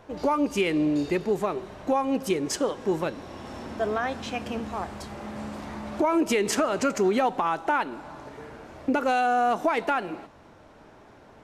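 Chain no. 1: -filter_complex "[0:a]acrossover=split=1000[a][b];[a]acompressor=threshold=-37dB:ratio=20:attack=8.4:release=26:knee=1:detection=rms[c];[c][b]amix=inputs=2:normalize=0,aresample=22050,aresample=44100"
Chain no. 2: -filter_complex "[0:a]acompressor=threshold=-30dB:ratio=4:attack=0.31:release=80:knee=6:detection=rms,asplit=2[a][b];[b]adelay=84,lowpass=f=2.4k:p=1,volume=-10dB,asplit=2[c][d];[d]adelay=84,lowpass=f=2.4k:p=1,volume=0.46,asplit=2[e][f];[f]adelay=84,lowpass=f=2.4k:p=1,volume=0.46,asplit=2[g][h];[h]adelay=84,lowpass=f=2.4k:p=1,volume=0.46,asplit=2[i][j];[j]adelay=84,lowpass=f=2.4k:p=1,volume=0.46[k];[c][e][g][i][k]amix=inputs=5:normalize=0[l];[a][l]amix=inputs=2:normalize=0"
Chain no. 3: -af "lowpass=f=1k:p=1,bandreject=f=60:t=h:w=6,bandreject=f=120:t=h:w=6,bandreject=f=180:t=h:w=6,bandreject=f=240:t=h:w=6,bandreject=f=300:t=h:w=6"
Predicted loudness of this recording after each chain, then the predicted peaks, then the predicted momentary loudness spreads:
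-33.0, -35.5, -28.5 LUFS; -16.0, -23.0, -14.5 dBFS; 14, 9, 15 LU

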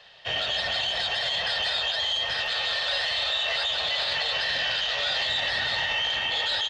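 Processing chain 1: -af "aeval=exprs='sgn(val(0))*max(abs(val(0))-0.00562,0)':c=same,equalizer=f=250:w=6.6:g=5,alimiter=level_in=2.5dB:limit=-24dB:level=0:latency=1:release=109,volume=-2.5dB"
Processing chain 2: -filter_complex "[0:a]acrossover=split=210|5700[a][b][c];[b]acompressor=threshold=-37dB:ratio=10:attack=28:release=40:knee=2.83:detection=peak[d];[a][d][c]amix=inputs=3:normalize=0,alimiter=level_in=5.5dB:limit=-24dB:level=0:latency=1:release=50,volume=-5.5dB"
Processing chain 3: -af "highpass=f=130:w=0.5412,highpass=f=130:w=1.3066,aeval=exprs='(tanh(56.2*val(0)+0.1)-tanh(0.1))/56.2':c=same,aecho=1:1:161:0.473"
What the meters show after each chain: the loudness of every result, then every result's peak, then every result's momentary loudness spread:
-33.0, -35.5, -33.0 LUFS; -26.5, -29.5, -31.0 dBFS; 1, 1, 1 LU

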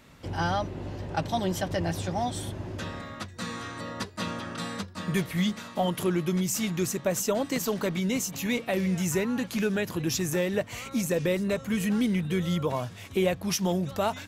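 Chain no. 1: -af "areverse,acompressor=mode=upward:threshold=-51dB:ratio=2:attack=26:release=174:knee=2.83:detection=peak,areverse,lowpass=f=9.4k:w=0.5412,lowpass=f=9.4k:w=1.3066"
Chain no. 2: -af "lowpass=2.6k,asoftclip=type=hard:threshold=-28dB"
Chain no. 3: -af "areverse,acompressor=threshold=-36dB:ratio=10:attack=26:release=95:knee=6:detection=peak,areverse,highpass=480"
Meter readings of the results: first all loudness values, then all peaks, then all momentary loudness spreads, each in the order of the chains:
-29.5, -33.0, -41.0 LUFS; -12.5, -28.0, -23.0 dBFS; 9, 6, 6 LU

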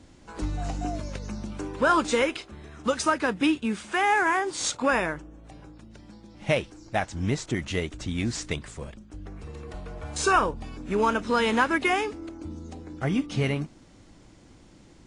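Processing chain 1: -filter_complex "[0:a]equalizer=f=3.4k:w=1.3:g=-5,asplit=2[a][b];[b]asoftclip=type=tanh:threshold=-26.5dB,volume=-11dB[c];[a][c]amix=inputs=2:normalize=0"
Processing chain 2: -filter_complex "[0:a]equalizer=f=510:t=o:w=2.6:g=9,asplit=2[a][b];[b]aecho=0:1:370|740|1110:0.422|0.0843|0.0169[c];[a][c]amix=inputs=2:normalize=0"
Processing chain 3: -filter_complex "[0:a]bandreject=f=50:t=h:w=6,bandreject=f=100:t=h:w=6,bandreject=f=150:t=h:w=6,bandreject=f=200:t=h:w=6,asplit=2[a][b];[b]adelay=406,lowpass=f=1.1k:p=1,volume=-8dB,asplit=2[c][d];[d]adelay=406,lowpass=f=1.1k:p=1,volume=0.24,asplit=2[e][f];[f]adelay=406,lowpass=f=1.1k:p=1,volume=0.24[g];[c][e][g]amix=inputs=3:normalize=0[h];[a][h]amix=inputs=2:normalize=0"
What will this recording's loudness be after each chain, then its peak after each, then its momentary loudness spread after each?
-26.0, -20.5, -27.0 LUFS; -10.0, -4.0, -10.0 dBFS; 17, 17, 18 LU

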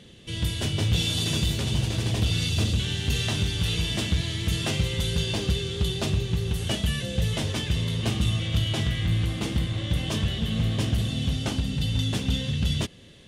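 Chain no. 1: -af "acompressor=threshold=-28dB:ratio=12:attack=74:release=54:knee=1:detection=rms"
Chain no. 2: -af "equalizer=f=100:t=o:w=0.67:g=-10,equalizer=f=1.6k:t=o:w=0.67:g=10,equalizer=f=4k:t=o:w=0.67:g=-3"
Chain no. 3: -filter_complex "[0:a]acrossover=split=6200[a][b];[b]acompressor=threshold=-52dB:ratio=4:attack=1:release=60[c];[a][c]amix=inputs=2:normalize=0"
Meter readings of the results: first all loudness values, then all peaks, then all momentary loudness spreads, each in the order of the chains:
-28.5, -28.5, -26.5 LUFS; -15.5, -13.0, -14.5 dBFS; 2, 3, 3 LU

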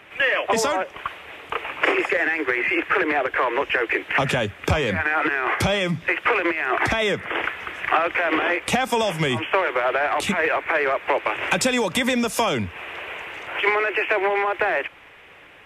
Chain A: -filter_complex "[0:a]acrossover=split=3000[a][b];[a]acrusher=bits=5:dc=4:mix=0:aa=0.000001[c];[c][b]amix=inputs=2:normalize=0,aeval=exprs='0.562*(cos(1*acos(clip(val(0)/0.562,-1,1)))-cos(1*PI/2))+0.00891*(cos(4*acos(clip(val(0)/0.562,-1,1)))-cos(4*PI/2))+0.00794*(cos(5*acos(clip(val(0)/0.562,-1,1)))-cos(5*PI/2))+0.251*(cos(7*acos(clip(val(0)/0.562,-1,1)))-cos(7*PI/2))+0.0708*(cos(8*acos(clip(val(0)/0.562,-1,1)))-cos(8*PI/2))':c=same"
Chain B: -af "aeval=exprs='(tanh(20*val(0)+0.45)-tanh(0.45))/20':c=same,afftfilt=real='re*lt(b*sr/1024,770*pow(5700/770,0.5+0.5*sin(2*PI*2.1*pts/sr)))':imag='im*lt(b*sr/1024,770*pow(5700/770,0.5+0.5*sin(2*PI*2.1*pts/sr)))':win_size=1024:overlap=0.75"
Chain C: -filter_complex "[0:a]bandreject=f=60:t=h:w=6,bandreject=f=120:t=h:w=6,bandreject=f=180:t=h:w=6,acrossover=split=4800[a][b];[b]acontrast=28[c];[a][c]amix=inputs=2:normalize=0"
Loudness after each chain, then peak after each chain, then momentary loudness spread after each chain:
-20.5, -31.0, -21.5 LUFS; -4.0, -20.5, -5.5 dBFS; 7, 7, 9 LU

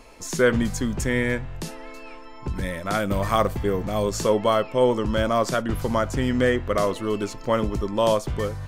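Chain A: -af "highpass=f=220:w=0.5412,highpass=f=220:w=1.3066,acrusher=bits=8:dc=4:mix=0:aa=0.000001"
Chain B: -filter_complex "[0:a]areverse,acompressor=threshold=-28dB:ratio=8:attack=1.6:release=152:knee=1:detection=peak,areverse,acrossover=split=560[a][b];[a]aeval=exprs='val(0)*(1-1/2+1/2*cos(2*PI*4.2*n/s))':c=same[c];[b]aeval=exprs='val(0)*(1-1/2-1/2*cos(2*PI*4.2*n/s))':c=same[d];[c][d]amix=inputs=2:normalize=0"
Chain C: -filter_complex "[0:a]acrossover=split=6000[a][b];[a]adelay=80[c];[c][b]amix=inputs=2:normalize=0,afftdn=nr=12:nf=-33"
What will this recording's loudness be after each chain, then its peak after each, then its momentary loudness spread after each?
-24.5, -39.0, -24.0 LUFS; -6.5, -24.0, -7.0 dBFS; 15, 5, 9 LU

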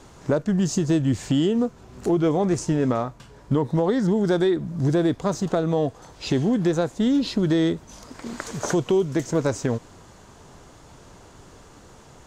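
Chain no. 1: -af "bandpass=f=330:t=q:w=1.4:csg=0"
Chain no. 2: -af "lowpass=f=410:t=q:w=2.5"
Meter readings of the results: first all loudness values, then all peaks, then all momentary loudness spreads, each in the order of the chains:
-25.5, -18.5 LUFS; -13.0, -5.5 dBFS; 9, 10 LU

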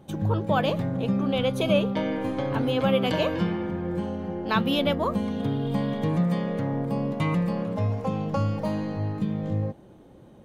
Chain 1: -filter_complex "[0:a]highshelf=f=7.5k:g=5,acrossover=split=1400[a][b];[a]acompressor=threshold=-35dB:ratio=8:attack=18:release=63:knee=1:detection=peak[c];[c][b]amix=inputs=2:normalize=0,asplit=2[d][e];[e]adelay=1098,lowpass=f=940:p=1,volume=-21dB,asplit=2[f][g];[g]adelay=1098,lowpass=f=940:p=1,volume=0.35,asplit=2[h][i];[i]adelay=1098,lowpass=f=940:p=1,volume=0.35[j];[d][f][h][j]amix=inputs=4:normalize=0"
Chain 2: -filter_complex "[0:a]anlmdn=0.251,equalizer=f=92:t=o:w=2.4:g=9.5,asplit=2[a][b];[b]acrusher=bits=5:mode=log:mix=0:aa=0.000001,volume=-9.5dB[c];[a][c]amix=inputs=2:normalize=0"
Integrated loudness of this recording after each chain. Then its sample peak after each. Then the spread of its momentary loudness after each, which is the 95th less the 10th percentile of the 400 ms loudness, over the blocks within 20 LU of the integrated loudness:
-33.5, -19.0 LUFS; -14.5, -3.5 dBFS; 6, 6 LU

